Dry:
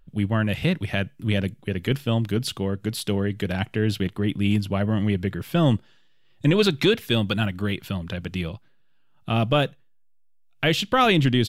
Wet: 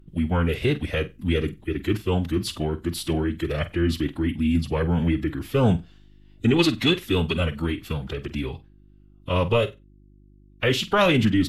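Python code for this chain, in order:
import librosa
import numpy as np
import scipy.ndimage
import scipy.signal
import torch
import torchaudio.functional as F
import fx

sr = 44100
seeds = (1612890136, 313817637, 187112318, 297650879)

y = fx.pitch_keep_formants(x, sr, semitones=-4.0)
y = fx.room_flutter(y, sr, wall_m=8.1, rt60_s=0.21)
y = fx.dmg_buzz(y, sr, base_hz=50.0, harmonics=7, level_db=-53.0, tilt_db=-5, odd_only=False)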